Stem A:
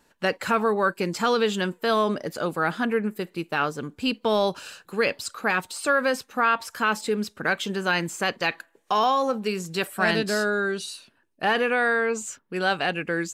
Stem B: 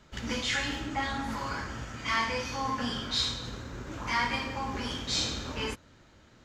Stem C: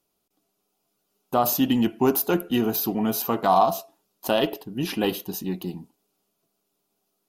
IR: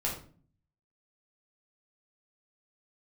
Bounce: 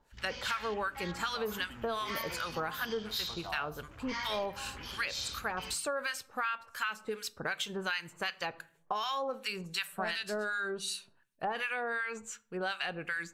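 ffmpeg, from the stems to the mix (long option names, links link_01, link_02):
-filter_complex "[0:a]bandreject=frequency=5000:width=17,acrossover=split=1100[link_01][link_02];[link_01]aeval=exprs='val(0)*(1-1/2+1/2*cos(2*PI*2.7*n/s))':channel_layout=same[link_03];[link_02]aeval=exprs='val(0)*(1-1/2-1/2*cos(2*PI*2.7*n/s))':channel_layout=same[link_04];[link_03][link_04]amix=inputs=2:normalize=0,volume=1dB,asplit=2[link_05][link_06];[link_06]volume=-20dB[link_07];[1:a]afwtdn=0.00794,equalizer=frequency=5000:width=0.84:gain=5,volume=-8.5dB[link_08];[2:a]volume=-19.5dB[link_09];[3:a]atrim=start_sample=2205[link_10];[link_07][link_10]afir=irnorm=-1:irlink=0[link_11];[link_05][link_08][link_09][link_11]amix=inputs=4:normalize=0,equalizer=frequency=270:width=0.64:gain=-11,acompressor=threshold=-31dB:ratio=6"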